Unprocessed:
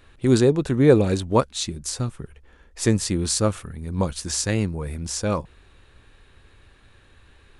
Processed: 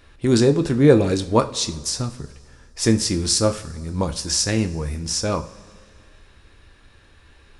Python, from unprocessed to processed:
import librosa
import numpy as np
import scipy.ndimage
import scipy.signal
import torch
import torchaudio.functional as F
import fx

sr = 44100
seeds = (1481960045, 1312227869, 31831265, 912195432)

y = fx.peak_eq(x, sr, hz=5300.0, db=8.0, octaves=0.34)
y = fx.rev_double_slope(y, sr, seeds[0], early_s=0.37, late_s=2.1, knee_db=-17, drr_db=7.0)
y = y * 10.0 ** (1.0 / 20.0)